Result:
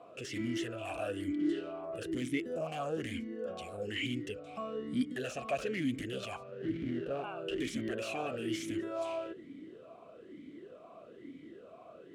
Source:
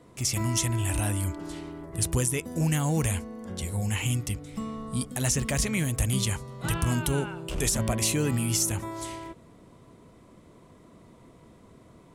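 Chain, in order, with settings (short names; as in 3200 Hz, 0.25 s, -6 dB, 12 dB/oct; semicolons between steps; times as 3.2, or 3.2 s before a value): 6.43–7.24 median filter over 41 samples; in parallel at +1.5 dB: compressor, threshold -35 dBFS, peak gain reduction 14 dB; on the sum: sine folder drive 9 dB, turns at -10.5 dBFS; vowel sweep a-i 1.1 Hz; gain -6 dB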